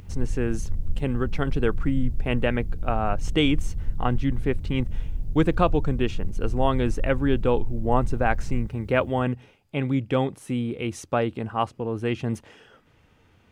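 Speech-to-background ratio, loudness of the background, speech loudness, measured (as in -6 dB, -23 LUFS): 8.0 dB, -34.5 LUFS, -26.5 LUFS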